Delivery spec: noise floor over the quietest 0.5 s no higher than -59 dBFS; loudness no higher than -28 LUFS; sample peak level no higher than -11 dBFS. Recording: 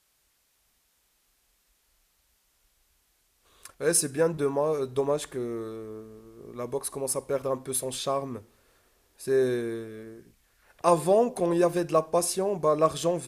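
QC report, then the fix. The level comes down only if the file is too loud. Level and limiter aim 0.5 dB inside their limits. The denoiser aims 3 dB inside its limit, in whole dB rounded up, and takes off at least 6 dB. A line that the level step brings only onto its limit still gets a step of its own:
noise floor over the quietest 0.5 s -70 dBFS: pass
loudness -27.0 LUFS: fail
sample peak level -8.5 dBFS: fail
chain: trim -1.5 dB; peak limiter -11.5 dBFS

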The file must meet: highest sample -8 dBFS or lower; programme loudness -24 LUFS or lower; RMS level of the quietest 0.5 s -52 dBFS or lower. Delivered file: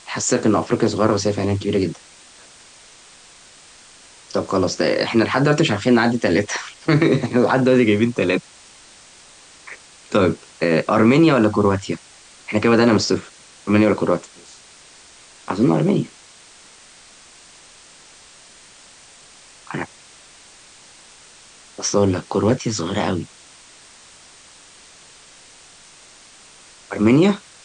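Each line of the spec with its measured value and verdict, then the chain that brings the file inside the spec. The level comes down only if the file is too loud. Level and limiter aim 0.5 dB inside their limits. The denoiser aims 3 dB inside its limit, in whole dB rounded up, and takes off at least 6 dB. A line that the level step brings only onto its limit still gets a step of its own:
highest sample -5.5 dBFS: fail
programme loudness -18.5 LUFS: fail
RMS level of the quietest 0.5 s -46 dBFS: fail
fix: noise reduction 6 dB, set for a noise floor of -46 dBFS; trim -6 dB

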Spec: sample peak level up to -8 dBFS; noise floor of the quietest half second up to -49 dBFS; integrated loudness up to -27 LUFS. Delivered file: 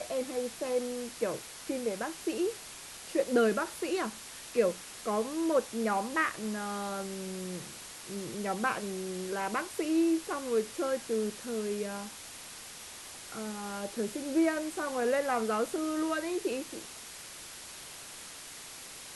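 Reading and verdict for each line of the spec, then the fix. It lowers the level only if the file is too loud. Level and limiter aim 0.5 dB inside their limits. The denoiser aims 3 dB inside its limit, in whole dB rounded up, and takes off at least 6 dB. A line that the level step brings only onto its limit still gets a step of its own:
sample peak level -15.0 dBFS: pass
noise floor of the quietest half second -47 dBFS: fail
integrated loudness -33.5 LUFS: pass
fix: noise reduction 6 dB, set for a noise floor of -47 dBFS

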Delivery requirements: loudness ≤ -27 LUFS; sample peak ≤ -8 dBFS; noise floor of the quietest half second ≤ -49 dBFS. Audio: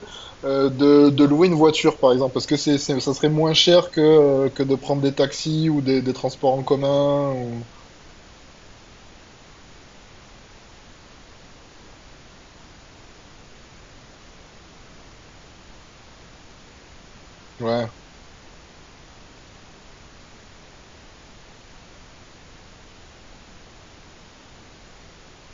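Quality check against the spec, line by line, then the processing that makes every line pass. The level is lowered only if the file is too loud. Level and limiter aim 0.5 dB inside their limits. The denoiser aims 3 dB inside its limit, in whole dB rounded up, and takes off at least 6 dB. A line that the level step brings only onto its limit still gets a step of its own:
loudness -18.5 LUFS: fail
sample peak -3.5 dBFS: fail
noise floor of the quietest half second -47 dBFS: fail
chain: trim -9 dB

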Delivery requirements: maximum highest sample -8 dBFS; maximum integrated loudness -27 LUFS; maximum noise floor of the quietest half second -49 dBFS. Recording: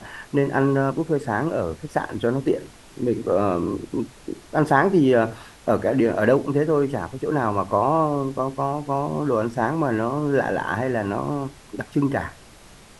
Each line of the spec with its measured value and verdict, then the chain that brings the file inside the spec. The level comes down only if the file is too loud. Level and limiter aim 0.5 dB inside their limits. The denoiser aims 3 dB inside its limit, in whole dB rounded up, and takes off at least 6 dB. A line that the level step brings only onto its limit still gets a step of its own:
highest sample -5.0 dBFS: fail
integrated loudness -23.0 LUFS: fail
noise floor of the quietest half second -47 dBFS: fail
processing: trim -4.5 dB

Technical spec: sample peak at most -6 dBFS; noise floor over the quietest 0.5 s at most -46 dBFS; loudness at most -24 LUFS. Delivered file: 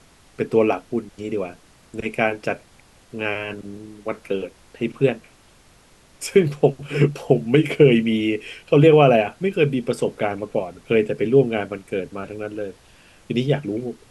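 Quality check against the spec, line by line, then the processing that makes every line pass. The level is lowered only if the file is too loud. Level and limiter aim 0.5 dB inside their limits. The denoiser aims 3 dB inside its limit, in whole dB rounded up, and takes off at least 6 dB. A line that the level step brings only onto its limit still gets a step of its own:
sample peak -2.5 dBFS: fail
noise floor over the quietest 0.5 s -53 dBFS: pass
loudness -21.0 LUFS: fail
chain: trim -3.5 dB; peak limiter -6.5 dBFS

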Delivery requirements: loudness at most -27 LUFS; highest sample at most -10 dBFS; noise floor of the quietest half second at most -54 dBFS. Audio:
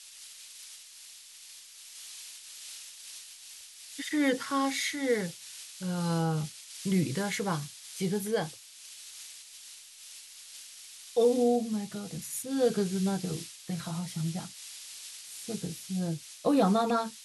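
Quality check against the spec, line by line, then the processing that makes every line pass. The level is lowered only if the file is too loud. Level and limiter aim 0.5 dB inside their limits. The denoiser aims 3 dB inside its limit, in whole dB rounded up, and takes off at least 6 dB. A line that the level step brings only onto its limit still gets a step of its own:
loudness -31.0 LUFS: pass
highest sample -14.0 dBFS: pass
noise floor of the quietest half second -50 dBFS: fail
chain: noise reduction 7 dB, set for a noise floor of -50 dBFS

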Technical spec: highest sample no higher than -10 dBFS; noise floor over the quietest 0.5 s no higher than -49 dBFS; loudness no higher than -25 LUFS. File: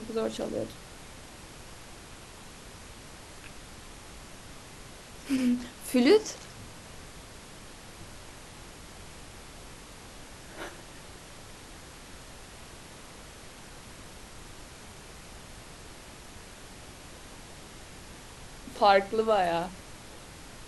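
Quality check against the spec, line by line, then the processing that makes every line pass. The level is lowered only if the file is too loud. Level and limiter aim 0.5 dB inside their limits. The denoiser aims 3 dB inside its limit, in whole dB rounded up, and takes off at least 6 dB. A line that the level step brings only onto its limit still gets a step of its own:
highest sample -9.0 dBFS: fail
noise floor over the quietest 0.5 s -47 dBFS: fail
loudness -27.5 LUFS: pass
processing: noise reduction 6 dB, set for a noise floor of -47 dBFS; peak limiter -10.5 dBFS

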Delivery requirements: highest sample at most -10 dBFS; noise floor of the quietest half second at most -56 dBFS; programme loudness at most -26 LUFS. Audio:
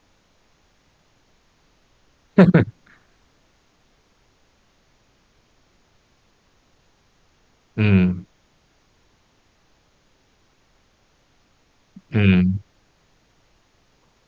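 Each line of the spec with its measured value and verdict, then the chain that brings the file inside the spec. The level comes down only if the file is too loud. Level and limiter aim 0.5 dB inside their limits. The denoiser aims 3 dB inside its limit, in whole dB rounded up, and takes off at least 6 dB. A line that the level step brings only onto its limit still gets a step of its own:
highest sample -2.0 dBFS: fail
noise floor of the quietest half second -61 dBFS: pass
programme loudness -18.5 LUFS: fail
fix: trim -8 dB; peak limiter -10.5 dBFS

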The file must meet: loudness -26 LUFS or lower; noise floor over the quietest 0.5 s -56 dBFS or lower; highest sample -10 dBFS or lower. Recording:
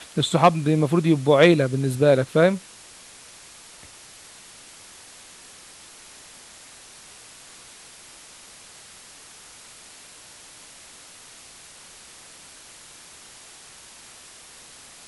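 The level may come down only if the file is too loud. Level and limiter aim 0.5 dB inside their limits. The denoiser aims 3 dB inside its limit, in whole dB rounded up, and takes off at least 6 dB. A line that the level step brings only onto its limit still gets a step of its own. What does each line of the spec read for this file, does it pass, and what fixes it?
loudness -19.0 LUFS: fail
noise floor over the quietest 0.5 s -46 dBFS: fail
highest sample -2.5 dBFS: fail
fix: noise reduction 6 dB, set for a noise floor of -46 dBFS; trim -7.5 dB; peak limiter -10.5 dBFS

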